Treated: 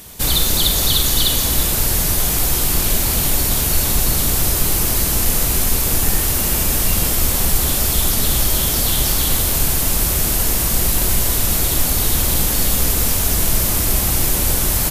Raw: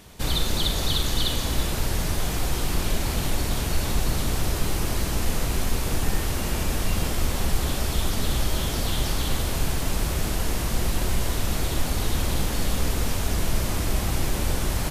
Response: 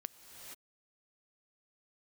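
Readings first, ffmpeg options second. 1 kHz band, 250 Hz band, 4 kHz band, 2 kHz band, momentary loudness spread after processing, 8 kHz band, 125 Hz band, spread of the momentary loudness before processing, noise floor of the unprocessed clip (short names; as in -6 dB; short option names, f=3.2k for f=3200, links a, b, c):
+5.0 dB, +4.5 dB, +8.5 dB, +6.0 dB, 2 LU, +14.5 dB, +4.5 dB, 2 LU, -27 dBFS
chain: -af "aemphasis=mode=production:type=50fm,volume=5dB"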